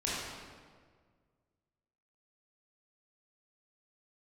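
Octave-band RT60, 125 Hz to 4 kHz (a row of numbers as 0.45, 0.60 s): 2.2, 1.9, 1.9, 1.6, 1.4, 1.2 s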